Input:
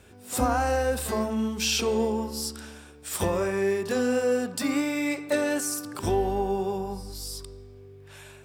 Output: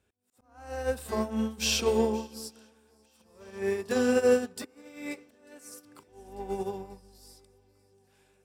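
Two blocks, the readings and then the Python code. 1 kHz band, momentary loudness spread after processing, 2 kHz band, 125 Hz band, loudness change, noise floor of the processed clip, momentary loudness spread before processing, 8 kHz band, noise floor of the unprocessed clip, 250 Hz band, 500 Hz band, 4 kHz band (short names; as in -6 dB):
-9.0 dB, 22 LU, -6.0 dB, -9.0 dB, -2.0 dB, -67 dBFS, 12 LU, -6.5 dB, -49 dBFS, -5.0 dB, -3.0 dB, -3.5 dB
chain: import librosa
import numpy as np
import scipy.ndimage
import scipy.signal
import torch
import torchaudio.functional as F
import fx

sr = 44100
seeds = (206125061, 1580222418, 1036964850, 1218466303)

y = fx.auto_swell(x, sr, attack_ms=583.0)
y = fx.echo_swing(y, sr, ms=894, ratio=1.5, feedback_pct=65, wet_db=-18)
y = fx.upward_expand(y, sr, threshold_db=-38.0, expansion=2.5)
y = y * librosa.db_to_amplitude(3.5)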